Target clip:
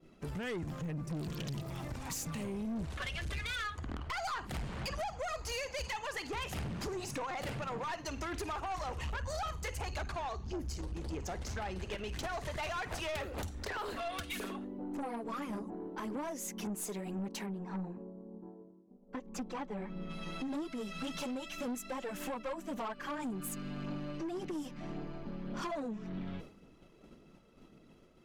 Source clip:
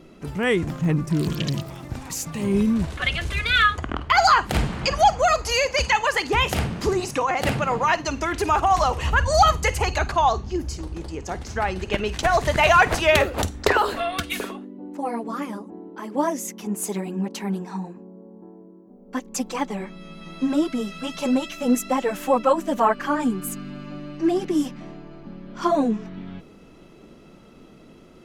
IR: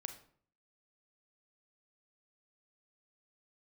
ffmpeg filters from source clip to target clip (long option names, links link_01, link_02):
-filter_complex "[0:a]asplit=3[link_01][link_02][link_03];[link_01]afade=type=out:start_time=17.45:duration=0.02[link_04];[link_02]lowpass=frequency=1300:poles=1,afade=type=in:start_time=17.45:duration=0.02,afade=type=out:start_time=20.09:duration=0.02[link_05];[link_03]afade=type=in:start_time=20.09:duration=0.02[link_06];[link_04][link_05][link_06]amix=inputs=3:normalize=0,agate=range=-33dB:threshold=-38dB:ratio=3:detection=peak,acompressor=threshold=-36dB:ratio=4,aphaser=in_gain=1:out_gain=1:delay=2.2:decay=0.28:speed=1.8:type=triangular,aeval=exprs='(tanh(56.2*val(0)+0.2)-tanh(0.2))/56.2':channel_layout=same,volume=1dB"